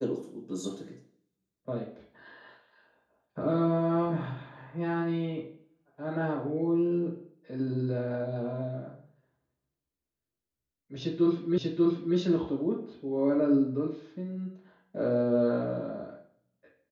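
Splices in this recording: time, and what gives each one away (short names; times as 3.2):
11.58 repeat of the last 0.59 s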